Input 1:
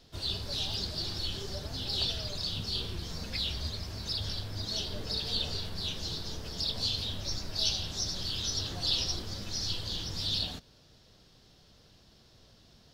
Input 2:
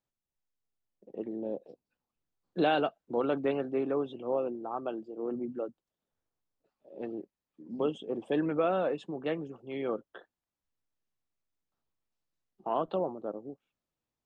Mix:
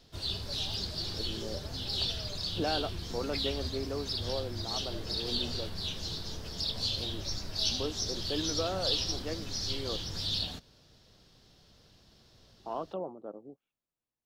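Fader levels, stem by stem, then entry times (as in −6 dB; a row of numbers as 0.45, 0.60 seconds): −1.0, −6.0 decibels; 0.00, 0.00 seconds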